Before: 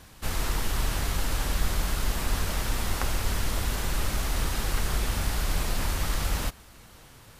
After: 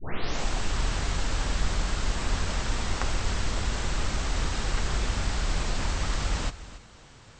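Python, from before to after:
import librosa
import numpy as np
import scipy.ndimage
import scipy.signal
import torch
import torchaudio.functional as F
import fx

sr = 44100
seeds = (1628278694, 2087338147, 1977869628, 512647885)

y = fx.tape_start_head(x, sr, length_s=0.71)
y = scipy.signal.sosfilt(scipy.signal.butter(16, 8200.0, 'lowpass', fs=sr, output='sos'), y)
y = y + 10.0 ** (-15.5 / 20.0) * np.pad(y, (int(280 * sr / 1000.0), 0))[:len(y)]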